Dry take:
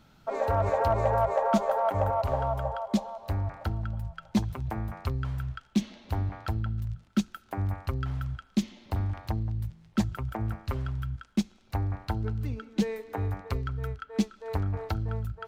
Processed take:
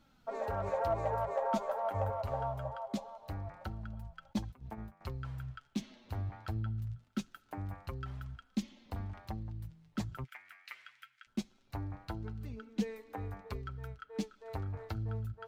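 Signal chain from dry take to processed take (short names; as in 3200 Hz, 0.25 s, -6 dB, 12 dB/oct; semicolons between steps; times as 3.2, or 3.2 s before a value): 4.33–5.01 gate -31 dBFS, range -15 dB; 10.24–11.27 resonant high-pass 2100 Hz, resonance Q 4.1; flange 0.23 Hz, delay 3.5 ms, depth 5.9 ms, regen +40%; gain -4.5 dB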